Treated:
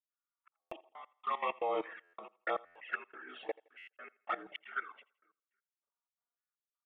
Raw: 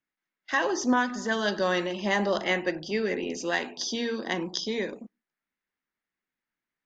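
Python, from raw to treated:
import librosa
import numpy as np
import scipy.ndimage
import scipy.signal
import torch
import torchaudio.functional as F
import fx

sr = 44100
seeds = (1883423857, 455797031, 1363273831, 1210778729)

y = fx.partial_stretch(x, sr, pct=80)
y = fx.env_flanger(y, sr, rest_ms=4.2, full_db=-24.5)
y = fx.filter_lfo_highpass(y, sr, shape='saw_down', hz=1.1, low_hz=560.0, high_hz=1800.0, q=2.6)
y = fx.level_steps(y, sr, step_db=17)
y = fx.echo_feedback(y, sr, ms=427, feedback_pct=30, wet_db=-24.0)
y = fx.step_gate(y, sr, bpm=158, pattern='.xxxx..x..x..xxx', floor_db=-60.0, edge_ms=4.5)
y = fx.env_lowpass(y, sr, base_hz=1700.0, full_db=-36.5)
y = fx.echo_thinned(y, sr, ms=83, feedback_pct=35, hz=210.0, wet_db=-22.5)
y = fx.buffer_glitch(y, sr, at_s=(0.61, 2.03, 2.65, 3.77, 5.72, 6.39), block=512, repeats=8)
y = y * 10.0 ** (1.5 / 20.0)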